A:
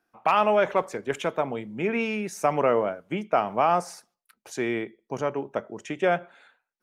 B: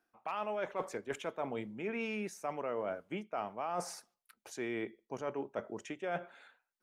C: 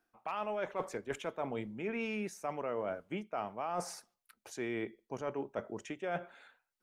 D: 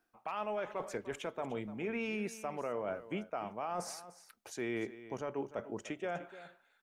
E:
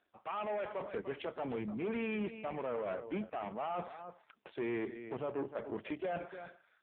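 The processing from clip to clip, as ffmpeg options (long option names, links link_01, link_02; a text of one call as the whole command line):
ffmpeg -i in.wav -af "equalizer=frequency=150:width_type=o:width=0.56:gain=-5,areverse,acompressor=threshold=-31dB:ratio=6,areverse,volume=-3.5dB" out.wav
ffmpeg -i in.wav -af "lowshelf=frequency=85:gain=9" out.wav
ffmpeg -i in.wav -af "alimiter=level_in=5dB:limit=-24dB:level=0:latency=1:release=110,volume=-5dB,aecho=1:1:298:0.178,volume=1dB" out.wav
ffmpeg -i in.wav -af "asoftclip=type=tanh:threshold=-37.5dB,volume=6dB" -ar 8000 -c:a libopencore_amrnb -b:a 5150 out.amr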